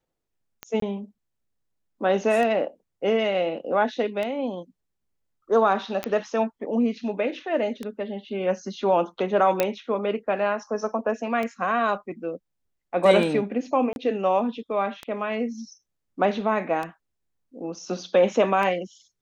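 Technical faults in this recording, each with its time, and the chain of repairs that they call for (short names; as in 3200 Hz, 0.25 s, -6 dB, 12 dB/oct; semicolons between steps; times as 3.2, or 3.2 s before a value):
tick 33 1/3 rpm -17 dBFS
0.8–0.82 gap 23 ms
6.04 pop -13 dBFS
9.6 pop -7 dBFS
13.93–13.96 gap 31 ms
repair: de-click; interpolate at 0.8, 23 ms; interpolate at 13.93, 31 ms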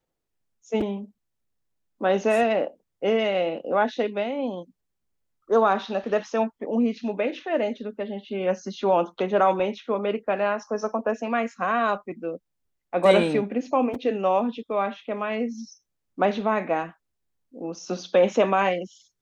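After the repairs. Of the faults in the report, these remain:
9.6 pop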